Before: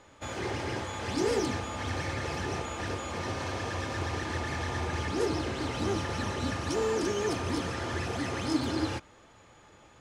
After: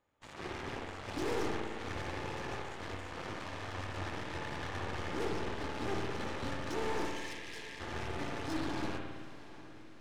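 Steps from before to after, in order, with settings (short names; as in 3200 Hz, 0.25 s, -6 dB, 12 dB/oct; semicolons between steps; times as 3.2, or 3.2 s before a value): high shelf 5200 Hz -10.5 dB; added harmonics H 3 -33 dB, 6 -16 dB, 7 -17 dB, 8 -25 dB, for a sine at -16.5 dBFS; soft clip -35 dBFS, distortion -3 dB; 7.05–7.8 brick-wall FIR high-pass 1600 Hz; diffused feedback echo 0.742 s, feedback 60%, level -16 dB; spring tank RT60 1.6 s, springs 53 ms, chirp 70 ms, DRR 1.5 dB; gain +2.5 dB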